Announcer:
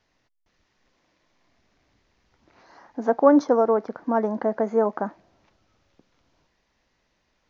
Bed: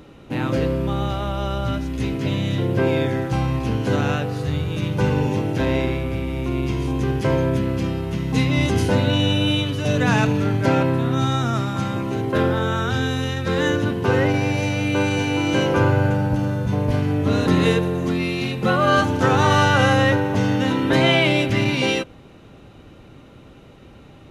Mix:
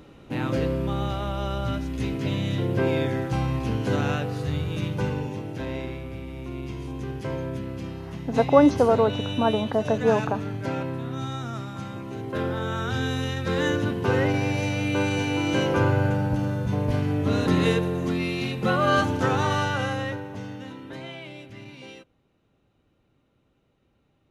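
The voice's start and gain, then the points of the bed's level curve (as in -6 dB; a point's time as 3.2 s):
5.30 s, 0.0 dB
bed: 4.82 s -4 dB
5.33 s -11 dB
12.03 s -11 dB
13.12 s -4 dB
19.09 s -4 dB
21.16 s -23 dB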